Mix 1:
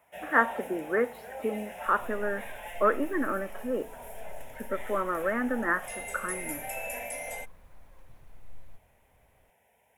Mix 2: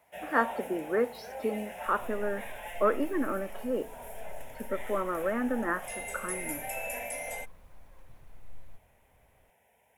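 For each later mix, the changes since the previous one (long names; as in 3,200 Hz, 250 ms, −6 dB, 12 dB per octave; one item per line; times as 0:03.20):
speech: remove low-pass with resonance 2,000 Hz, resonance Q 2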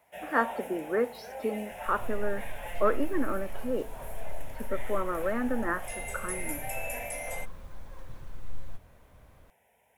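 second sound +10.5 dB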